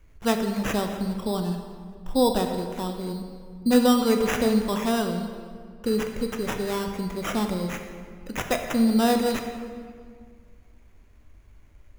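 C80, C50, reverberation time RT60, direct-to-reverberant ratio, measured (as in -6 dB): 7.5 dB, 6.5 dB, 2.0 s, 4.5 dB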